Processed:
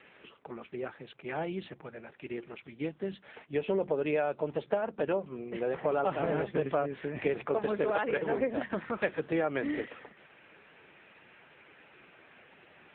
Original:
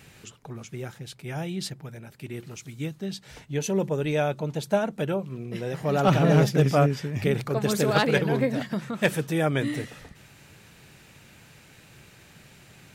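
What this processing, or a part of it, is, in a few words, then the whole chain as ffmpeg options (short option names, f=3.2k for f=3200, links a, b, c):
voicemail: -af "highpass=350,lowpass=2.6k,acompressor=threshold=-28dB:ratio=12,volume=3.5dB" -ar 8000 -c:a libopencore_amrnb -b:a 6700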